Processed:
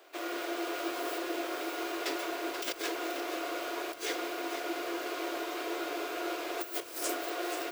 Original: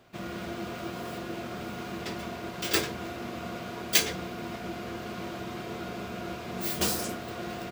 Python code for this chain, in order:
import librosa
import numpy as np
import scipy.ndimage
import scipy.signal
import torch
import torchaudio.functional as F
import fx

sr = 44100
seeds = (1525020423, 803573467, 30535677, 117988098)

y = scipy.signal.sosfilt(scipy.signal.cheby1(10, 1.0, 280.0, 'highpass', fs=sr, output='sos'), x)
y = fx.high_shelf(y, sr, hz=9500.0, db=7.5)
y = fx.over_compress(y, sr, threshold_db=-34.0, ratio=-0.5)
y = y + 10.0 ** (-23.5 / 20.0) * np.pad(y, (int(783 * sr / 1000.0), 0))[:len(y)]
y = fx.echo_crushed(y, sr, ms=481, feedback_pct=35, bits=8, wet_db=-9.5)